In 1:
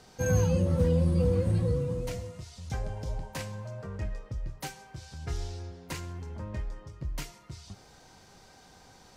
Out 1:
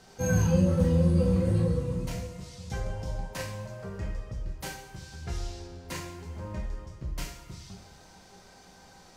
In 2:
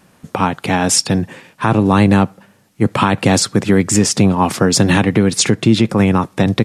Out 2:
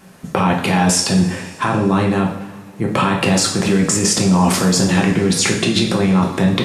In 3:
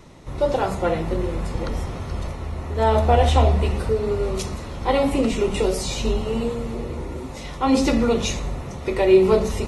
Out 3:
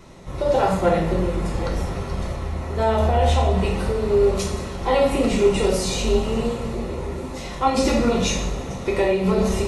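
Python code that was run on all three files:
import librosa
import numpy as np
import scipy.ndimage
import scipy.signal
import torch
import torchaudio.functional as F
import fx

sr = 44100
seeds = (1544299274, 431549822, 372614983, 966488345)

p1 = fx.over_compress(x, sr, threshold_db=-19.0, ratio=-0.5)
p2 = x + (p1 * 10.0 ** (2.0 / 20.0))
p3 = fx.rev_double_slope(p2, sr, seeds[0], early_s=0.55, late_s=2.7, knee_db=-17, drr_db=-0.5)
y = p3 * 10.0 ** (-8.5 / 20.0)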